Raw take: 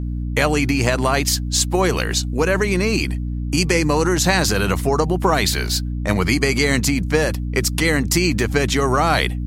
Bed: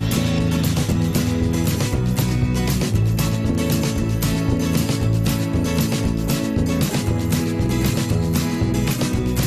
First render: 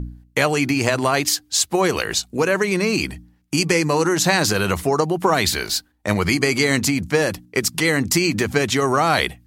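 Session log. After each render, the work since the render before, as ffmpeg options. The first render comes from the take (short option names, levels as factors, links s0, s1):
-af "bandreject=f=60:t=h:w=4,bandreject=f=120:t=h:w=4,bandreject=f=180:t=h:w=4,bandreject=f=240:t=h:w=4,bandreject=f=300:t=h:w=4"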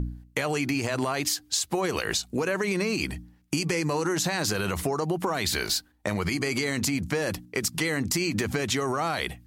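-af "alimiter=limit=0.251:level=0:latency=1:release=66,acompressor=threshold=0.0708:ratio=6"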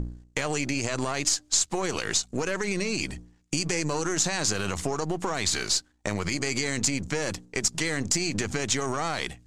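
-af "aeval=exprs='if(lt(val(0),0),0.447*val(0),val(0))':c=same,lowpass=f=7200:t=q:w=2.8"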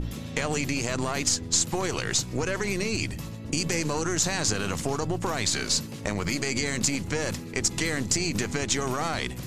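-filter_complex "[1:a]volume=0.133[s0];[0:a][s0]amix=inputs=2:normalize=0"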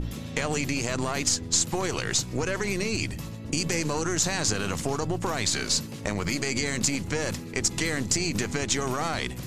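-af anull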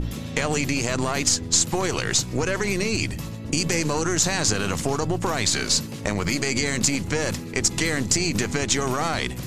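-af "volume=1.58"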